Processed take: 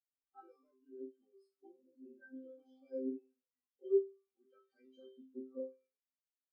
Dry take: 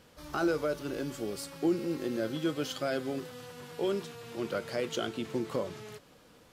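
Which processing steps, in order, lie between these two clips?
resonator bank C4 fifth, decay 0.72 s; spectral expander 2.5:1; gain +18 dB

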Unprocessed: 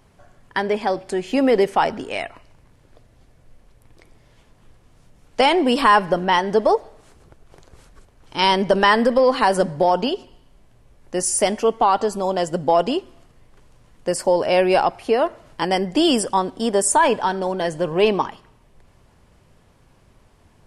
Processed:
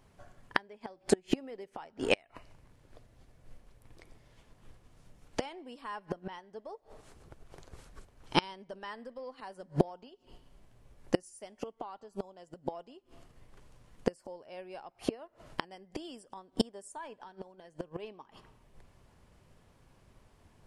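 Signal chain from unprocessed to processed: flipped gate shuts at -16 dBFS, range -27 dB; upward expander 1.5:1, over -53 dBFS; gain +6 dB

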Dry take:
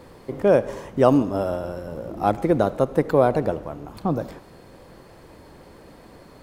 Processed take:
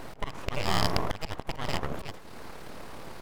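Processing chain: rattling part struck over -30 dBFS, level -13 dBFS; full-wave rectifier; in parallel at +0.5 dB: compressor, threshold -25 dBFS, peak gain reduction 14.5 dB; on the sum: granular stretch 0.5×, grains 55 ms; auto swell 0.371 s; gain +1 dB

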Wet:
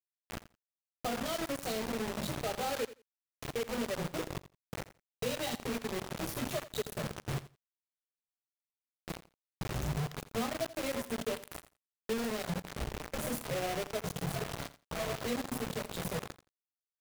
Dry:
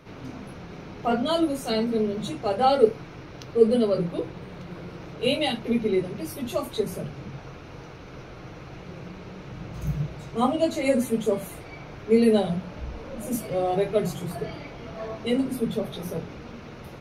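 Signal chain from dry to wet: gate with hold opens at -28 dBFS; low shelf 450 Hz +5 dB; comb 1.6 ms, depth 34%; compressor 6:1, threshold -30 dBFS, peak gain reduction 20 dB; flange 1.2 Hz, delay 6.1 ms, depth 2.9 ms, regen +69%; requantised 6-bit, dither none; on a send: feedback echo 85 ms, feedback 15%, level -16 dB

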